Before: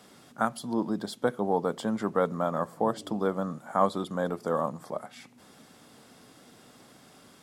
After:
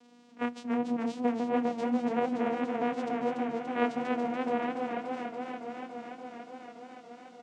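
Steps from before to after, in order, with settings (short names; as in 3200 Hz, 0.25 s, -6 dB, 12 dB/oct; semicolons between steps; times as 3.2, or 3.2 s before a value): nonlinear frequency compression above 3700 Hz 4:1; echo 0.147 s -17.5 dB; vocoder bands 4, saw 241 Hz; warbling echo 0.286 s, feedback 80%, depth 72 cents, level -5 dB; gain -2.5 dB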